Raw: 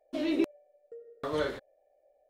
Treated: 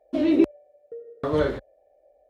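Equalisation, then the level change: high-pass 40 Hz 24 dB/octave; tilt EQ -2.5 dB/octave; +5.5 dB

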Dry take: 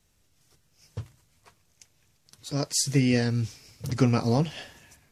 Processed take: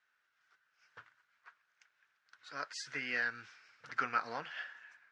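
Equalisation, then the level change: band-pass filter 1.5 kHz, Q 5.4; distance through air 120 m; tilt EQ +2.5 dB/octave; +8.0 dB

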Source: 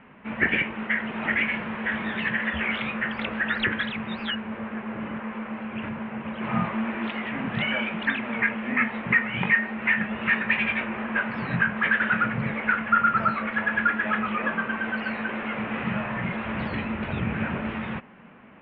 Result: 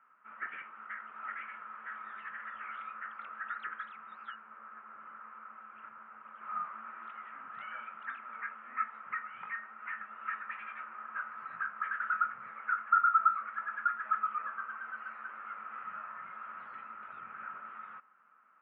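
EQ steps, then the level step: band-pass filter 1.3 kHz, Q 13; 0.0 dB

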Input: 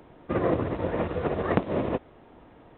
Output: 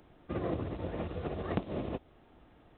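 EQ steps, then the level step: band-stop 960 Hz, Q 16; dynamic bell 1.6 kHz, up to -5 dB, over -44 dBFS, Q 1.1; ten-band graphic EQ 125 Hz -4 dB, 250 Hz -4 dB, 500 Hz -7 dB, 1 kHz -4 dB, 2 kHz -4 dB; -2.5 dB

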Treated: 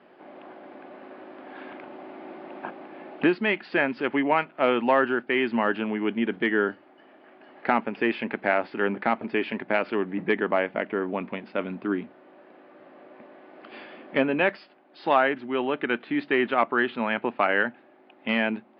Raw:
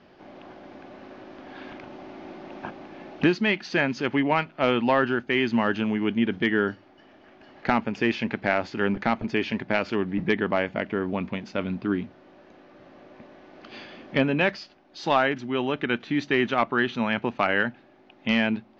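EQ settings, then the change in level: high-pass 290 Hz 12 dB/octave; elliptic low-pass 5.1 kHz, stop band 40 dB; distance through air 360 m; +3.5 dB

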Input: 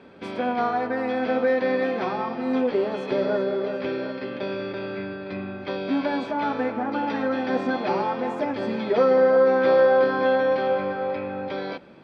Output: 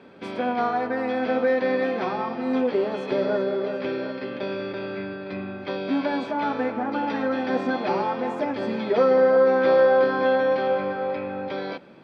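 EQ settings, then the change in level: high-pass 90 Hz; 0.0 dB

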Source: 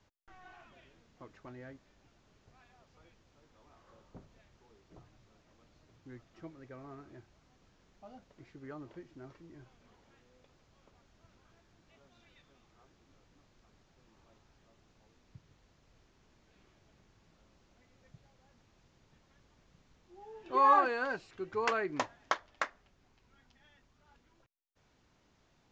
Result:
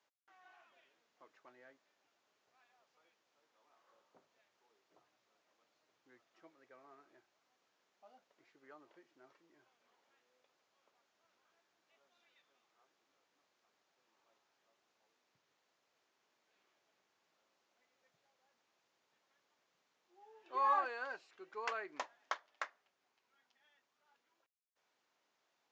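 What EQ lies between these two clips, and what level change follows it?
band-pass filter 530 Hz, Q 0.67; differentiator; +11.5 dB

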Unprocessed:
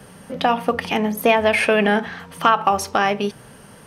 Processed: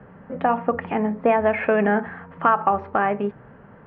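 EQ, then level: low-pass 1.9 kHz 24 dB/octave; distance through air 120 m; -1.5 dB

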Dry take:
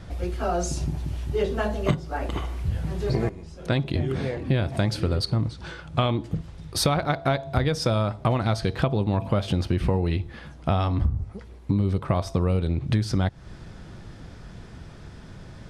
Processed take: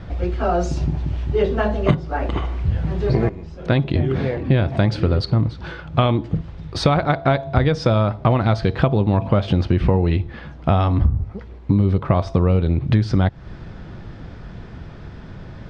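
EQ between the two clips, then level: distance through air 130 m; treble shelf 6.7 kHz -7 dB; +6.5 dB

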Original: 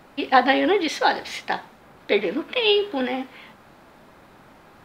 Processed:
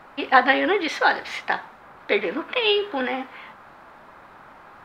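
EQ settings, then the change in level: dynamic bell 860 Hz, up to -6 dB, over -31 dBFS, Q 1.4; bass shelf 120 Hz +5.5 dB; peaking EQ 1.2 kHz +14.5 dB 2.4 oct; -7.0 dB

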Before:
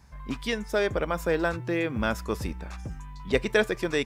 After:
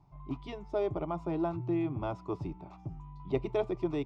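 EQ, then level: tape spacing loss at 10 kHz 28 dB; treble shelf 3.1 kHz -9.5 dB; static phaser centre 330 Hz, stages 8; 0.0 dB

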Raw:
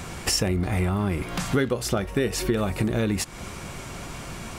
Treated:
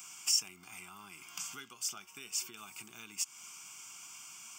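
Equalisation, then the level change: high-pass 110 Hz 24 dB/octave; differentiator; static phaser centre 2.7 kHz, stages 8; -1.0 dB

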